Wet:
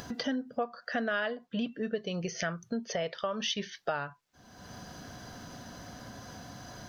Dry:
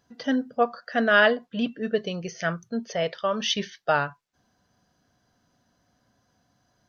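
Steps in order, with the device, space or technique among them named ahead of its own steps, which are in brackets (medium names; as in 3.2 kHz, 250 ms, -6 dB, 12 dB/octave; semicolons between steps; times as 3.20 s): upward and downward compression (upward compressor, threshold -27 dBFS; compression 5:1, threshold -30 dBFS, peak gain reduction 15 dB)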